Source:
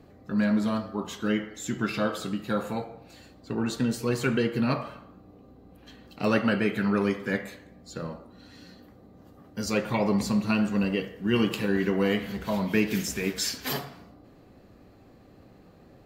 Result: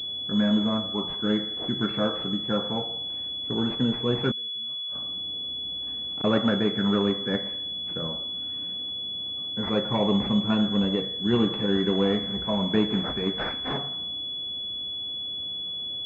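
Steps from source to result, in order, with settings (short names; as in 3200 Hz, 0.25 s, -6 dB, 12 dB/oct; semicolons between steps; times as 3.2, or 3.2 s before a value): 4.31–6.24 flipped gate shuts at -25 dBFS, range -32 dB; pulse-width modulation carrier 3400 Hz; gain +1.5 dB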